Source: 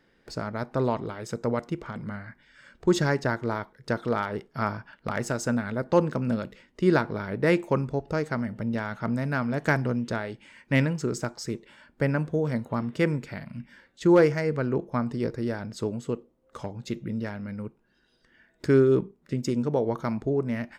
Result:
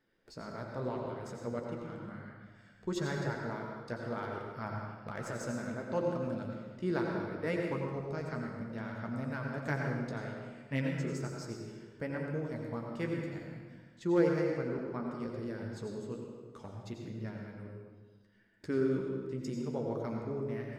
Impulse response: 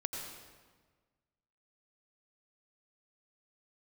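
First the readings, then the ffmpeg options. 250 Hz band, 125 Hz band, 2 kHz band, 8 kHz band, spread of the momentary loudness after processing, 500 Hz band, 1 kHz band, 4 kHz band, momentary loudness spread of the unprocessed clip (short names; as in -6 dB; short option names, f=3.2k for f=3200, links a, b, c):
-9.5 dB, -9.5 dB, -10.0 dB, -11.0 dB, 13 LU, -9.5 dB, -10.0 dB, -10.5 dB, 13 LU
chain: -filter_complex "[0:a]flanger=delay=7.7:depth=9.9:regen=-36:speed=0.65:shape=triangular[a];[1:a]atrim=start_sample=2205[b];[a][b]afir=irnorm=-1:irlink=0,volume=-8dB"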